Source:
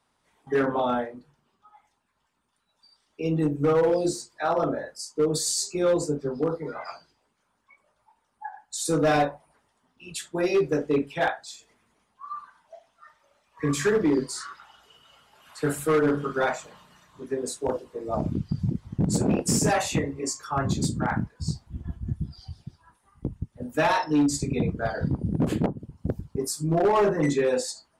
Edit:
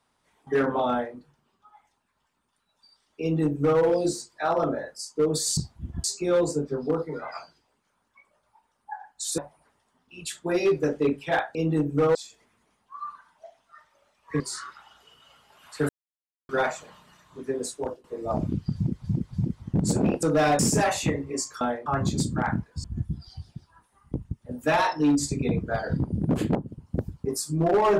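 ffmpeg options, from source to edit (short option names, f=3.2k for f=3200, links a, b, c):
-filter_complex "[0:a]asplit=17[a][b][c][d][e][f][g][h][i][j][k][l][m][n][o][p][q];[a]atrim=end=5.572[r];[b]atrim=start=21.478:end=21.952[s];[c]atrim=start=5.568:end=8.912[t];[d]atrim=start=9.268:end=11.442[u];[e]atrim=start=3.208:end=3.812[v];[f]atrim=start=11.438:end=13.692[w];[g]atrim=start=14.228:end=15.72,asetpts=PTS-STARTPTS,afade=t=out:st=1.488:d=0.004:c=hsin[x];[h]atrim=start=15.72:end=16.32,asetpts=PTS-STARTPTS,volume=0[y];[i]atrim=start=16.32:end=17.87,asetpts=PTS-STARTPTS,afade=t=in:d=0.004:c=hsin,afade=t=out:st=1.06:d=0.49:c=qsin:silence=0.141254[z];[j]atrim=start=17.87:end=18.872,asetpts=PTS-STARTPTS,afade=t=in:d=0.004:c=hsin:silence=0.141254[aa];[k]atrim=start=18.578:end=18.872[ab];[l]atrim=start=18.578:end=19.482[ac];[m]atrim=start=8.908:end=9.272[ad];[n]atrim=start=19.478:end=20.502[ae];[o]atrim=start=0.898:end=1.152[af];[p]atrim=start=20.498:end=21.482[ag];[q]atrim=start=21.948[ah];[r][s]acrossfade=d=0.004:c1=hsin:c2=hsin[ai];[ai][t]acrossfade=d=0.004:c1=hsin:c2=hsin[aj];[aj][u]acrossfade=d=0.004:c1=hsin:c2=hsin[ak];[ak][v]acrossfade=d=0.004:c1=hsin:c2=hsin[al];[al][w]acrossfade=d=0.004:c1=hsin:c2=hsin[am];[x][y][z][aa]concat=n=4:v=0:a=1[an];[am][an]acrossfade=d=0.004:c1=hsin:c2=hsin[ao];[ao][ab]acrossfade=d=0.004:c1=hsin:c2=hsin[ap];[ap][ac]acrossfade=d=0.004:c1=hsin:c2=hsin[aq];[aq][ad]acrossfade=d=0.004:c1=hsin:c2=hsin[ar];[ar][ae]acrossfade=d=0.004:c1=hsin:c2=hsin[as];[as][af]acrossfade=d=0.004:c1=hsin:c2=hsin[at];[at][ag]acrossfade=d=0.004:c1=hsin:c2=hsin[au];[au][ah]acrossfade=d=0.004:c1=hsin:c2=hsin"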